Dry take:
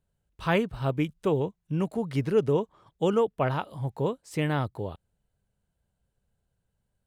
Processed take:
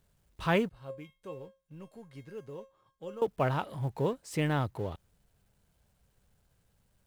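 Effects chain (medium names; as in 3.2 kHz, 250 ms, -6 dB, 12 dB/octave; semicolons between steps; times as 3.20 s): companding laws mixed up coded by mu; 0.69–3.22 s: feedback comb 540 Hz, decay 0.28 s, harmonics all, mix 90%; trim -3 dB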